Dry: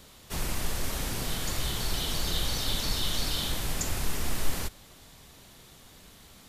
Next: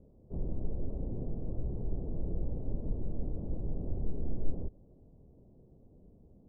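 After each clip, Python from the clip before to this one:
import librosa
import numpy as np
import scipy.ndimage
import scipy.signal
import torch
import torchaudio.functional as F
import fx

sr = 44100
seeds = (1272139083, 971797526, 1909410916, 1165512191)

y = scipy.signal.sosfilt(scipy.signal.cheby2(4, 60, 1800.0, 'lowpass', fs=sr, output='sos'), x)
y = y * 10.0 ** (-2.0 / 20.0)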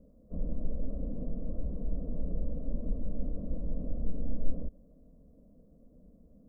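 y = fx.fixed_phaser(x, sr, hz=560.0, stages=8)
y = y * 10.0 ** (3.5 / 20.0)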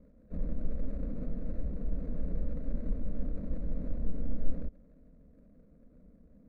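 y = scipy.signal.medfilt(x, 41)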